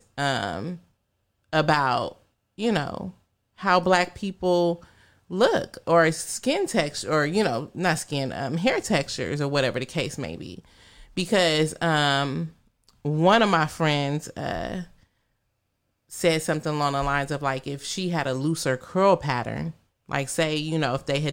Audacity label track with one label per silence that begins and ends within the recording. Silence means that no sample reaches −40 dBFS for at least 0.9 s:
14.850000	16.110000	silence